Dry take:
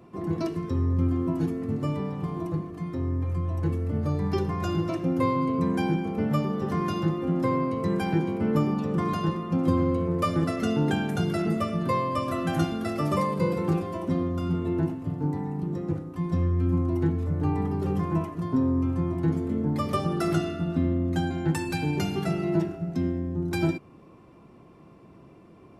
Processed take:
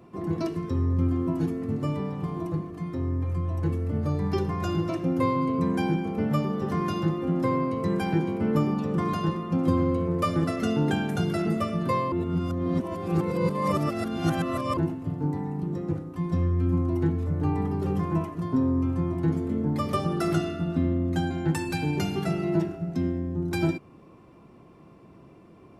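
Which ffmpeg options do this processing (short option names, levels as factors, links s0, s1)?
-filter_complex "[0:a]asplit=3[s0][s1][s2];[s0]atrim=end=12.122[s3];[s1]atrim=start=12.118:end=14.772,asetpts=PTS-STARTPTS,areverse[s4];[s2]atrim=start=14.768[s5];[s3][s4]acrossfade=d=0.004:c1=hsin:c2=hsin[s6];[s6][s5]acrossfade=d=0.004:c1=hsin:c2=hsin"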